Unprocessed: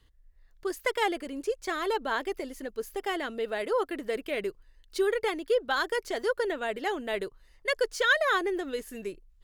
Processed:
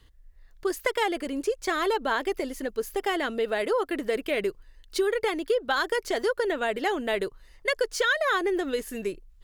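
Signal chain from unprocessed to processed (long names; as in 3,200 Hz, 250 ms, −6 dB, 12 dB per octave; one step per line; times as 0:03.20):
downward compressor 4 to 1, threshold −28 dBFS, peak gain reduction 8.5 dB
level +6 dB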